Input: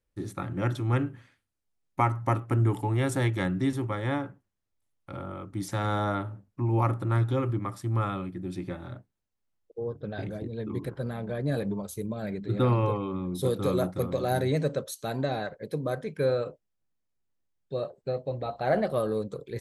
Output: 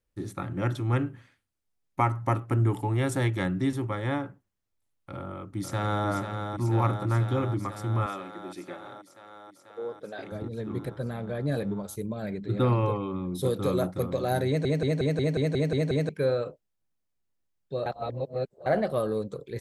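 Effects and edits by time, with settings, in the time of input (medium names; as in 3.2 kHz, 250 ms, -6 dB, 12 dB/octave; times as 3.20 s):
5.14–6.07 s: echo throw 490 ms, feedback 80%, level -6 dB
8.06–10.32 s: high-pass 360 Hz
14.47 s: stutter in place 0.18 s, 9 plays
17.86–18.66 s: reverse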